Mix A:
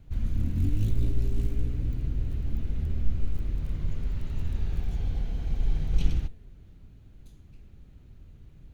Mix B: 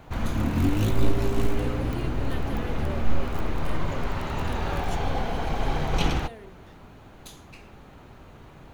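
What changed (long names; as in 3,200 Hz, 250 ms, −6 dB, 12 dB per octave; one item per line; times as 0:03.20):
background −8.5 dB
master: remove guitar amp tone stack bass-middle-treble 10-0-1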